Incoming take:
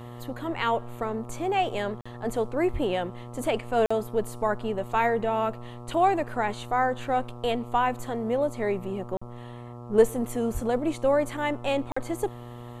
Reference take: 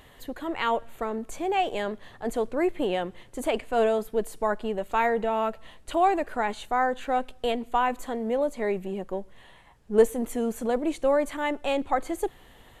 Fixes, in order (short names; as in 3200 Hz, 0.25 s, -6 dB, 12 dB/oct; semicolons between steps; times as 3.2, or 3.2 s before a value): de-hum 120.6 Hz, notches 11; 2.72–2.84 HPF 140 Hz 24 dB/oct; 10.53–10.65 HPF 140 Hz 24 dB/oct; interpolate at 2.01/3.86/9.17/11.92, 45 ms